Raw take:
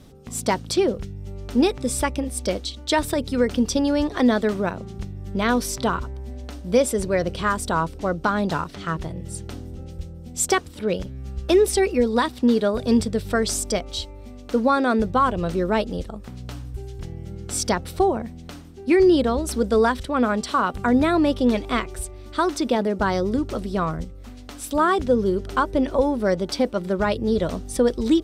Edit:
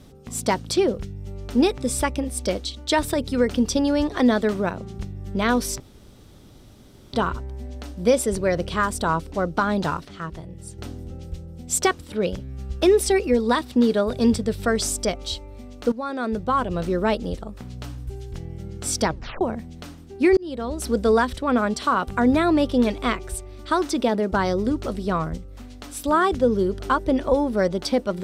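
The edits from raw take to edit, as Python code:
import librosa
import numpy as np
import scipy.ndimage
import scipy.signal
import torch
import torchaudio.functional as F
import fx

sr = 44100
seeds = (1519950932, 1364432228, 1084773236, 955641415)

y = fx.edit(x, sr, fx.insert_room_tone(at_s=5.8, length_s=1.33),
    fx.clip_gain(start_s=8.72, length_s=0.73, db=-6.0),
    fx.fade_in_from(start_s=14.59, length_s=1.28, curve='qsin', floor_db=-15.5),
    fx.tape_stop(start_s=17.73, length_s=0.35),
    fx.fade_in_span(start_s=19.04, length_s=0.58), tone=tone)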